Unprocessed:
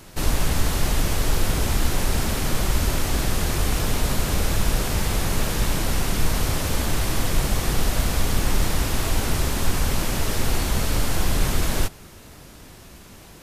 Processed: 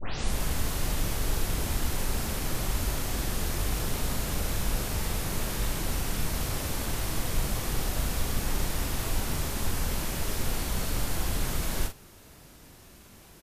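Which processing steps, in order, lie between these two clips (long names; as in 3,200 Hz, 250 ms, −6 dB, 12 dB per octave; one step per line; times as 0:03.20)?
turntable start at the beginning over 0.36 s
high-shelf EQ 11,000 Hz +6 dB
double-tracking delay 42 ms −7 dB
level −8.5 dB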